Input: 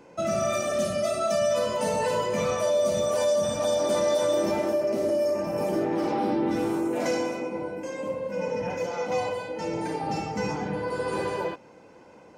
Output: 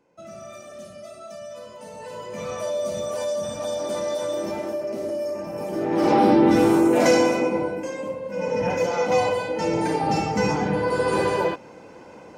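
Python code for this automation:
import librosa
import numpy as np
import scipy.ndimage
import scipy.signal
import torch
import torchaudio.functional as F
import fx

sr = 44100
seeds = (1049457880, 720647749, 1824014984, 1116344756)

y = fx.gain(x, sr, db=fx.line((1.9, -14.0), (2.6, -3.0), (5.7, -3.0), (6.12, 9.5), (7.48, 9.5), (8.22, -1.0), (8.66, 7.0)))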